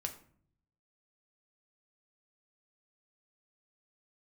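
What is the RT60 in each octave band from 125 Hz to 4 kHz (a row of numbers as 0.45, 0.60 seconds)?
1.1, 0.85, 0.60, 0.50, 0.45, 0.35 seconds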